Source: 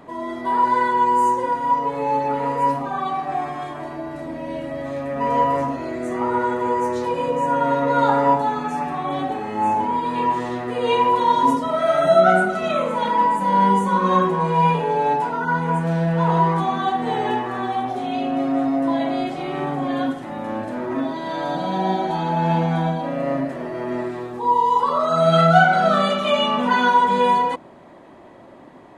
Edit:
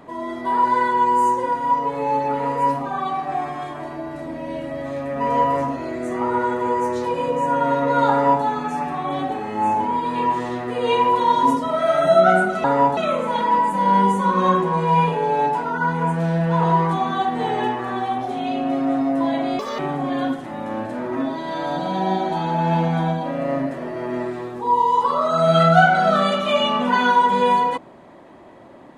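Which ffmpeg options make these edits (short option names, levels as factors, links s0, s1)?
-filter_complex "[0:a]asplit=5[s0][s1][s2][s3][s4];[s0]atrim=end=12.642[s5];[s1]atrim=start=8.108:end=8.442[s6];[s2]atrim=start=12.638:end=19.264[s7];[s3]atrim=start=19.26:end=19.57,asetpts=PTS-STARTPTS,asetrate=69237,aresample=44100[s8];[s4]atrim=start=19.566[s9];[s5][s6]acrossfade=d=0.004:c1=hsin:c2=hsin[s10];[s10][s7]acrossfade=d=0.004:c1=hsin:c2=hsin[s11];[s11][s8]acrossfade=d=0.004:c1=hsin:c2=hsin[s12];[s12][s9]acrossfade=d=0.004:c1=hsin:c2=hsin"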